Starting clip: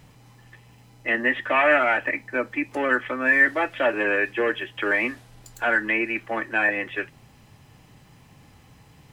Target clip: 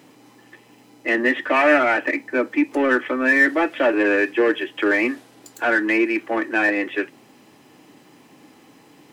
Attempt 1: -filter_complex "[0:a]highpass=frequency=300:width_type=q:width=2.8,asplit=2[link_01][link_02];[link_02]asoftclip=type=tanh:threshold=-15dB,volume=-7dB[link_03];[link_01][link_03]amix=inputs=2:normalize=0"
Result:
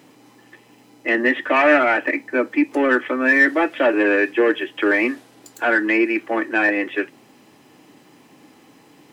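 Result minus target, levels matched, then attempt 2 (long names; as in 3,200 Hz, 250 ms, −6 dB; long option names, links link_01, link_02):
soft clipping: distortion −8 dB
-filter_complex "[0:a]highpass=frequency=300:width_type=q:width=2.8,asplit=2[link_01][link_02];[link_02]asoftclip=type=tanh:threshold=-24.5dB,volume=-7dB[link_03];[link_01][link_03]amix=inputs=2:normalize=0"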